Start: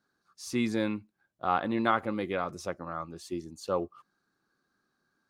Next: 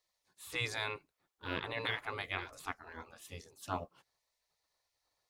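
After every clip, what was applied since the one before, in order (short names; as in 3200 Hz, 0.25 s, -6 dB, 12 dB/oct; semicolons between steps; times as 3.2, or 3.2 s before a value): spectral gate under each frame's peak -15 dB weak; gain +3 dB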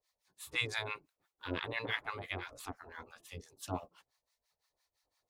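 harmonic tremolo 5.9 Hz, depth 100%, crossover 770 Hz; gain +4.5 dB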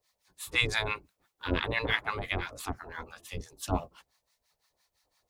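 octaver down 2 oct, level -1 dB; gain +7.5 dB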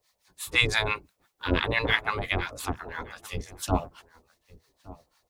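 outdoor echo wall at 200 m, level -19 dB; gain +4.5 dB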